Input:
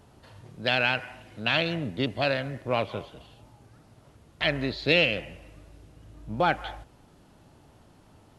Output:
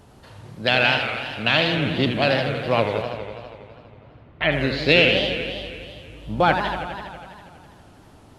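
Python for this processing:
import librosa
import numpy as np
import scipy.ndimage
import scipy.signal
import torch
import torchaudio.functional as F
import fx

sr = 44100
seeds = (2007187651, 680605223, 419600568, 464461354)

y = fx.lowpass(x, sr, hz=2800.0, slope=24, at=(3.02, 4.52))
y = fx.echo_warbled(y, sr, ms=82, feedback_pct=78, rate_hz=2.8, cents=200, wet_db=-8.0)
y = y * 10.0 ** (5.5 / 20.0)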